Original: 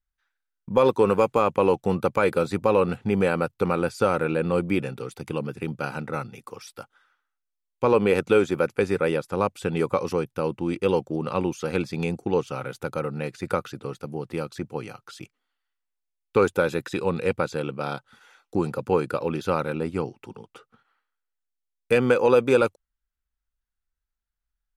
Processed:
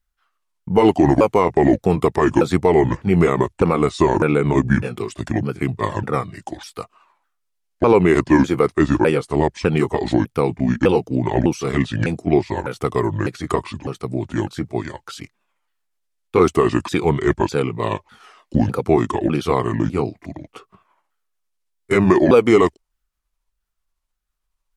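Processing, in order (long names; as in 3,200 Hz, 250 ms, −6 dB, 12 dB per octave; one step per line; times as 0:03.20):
pitch shifter swept by a sawtooth −7.5 semitones, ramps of 603 ms
brickwall limiter −12.5 dBFS, peak gain reduction 4 dB
level +9 dB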